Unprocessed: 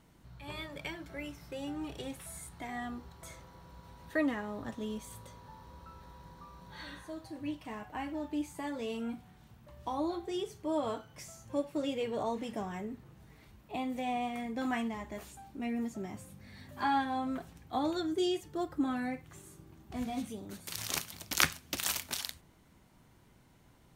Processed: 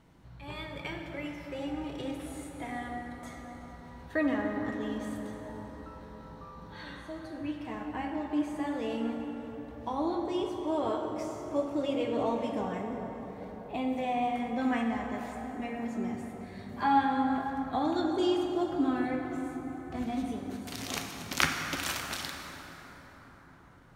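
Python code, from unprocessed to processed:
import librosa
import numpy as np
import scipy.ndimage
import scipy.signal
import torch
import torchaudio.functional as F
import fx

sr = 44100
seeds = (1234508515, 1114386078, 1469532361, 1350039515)

y = fx.lowpass(x, sr, hz=3700.0, slope=6)
y = fx.rev_plate(y, sr, seeds[0], rt60_s=5.0, hf_ratio=0.45, predelay_ms=0, drr_db=1.5)
y = y * librosa.db_to_amplitude(2.0)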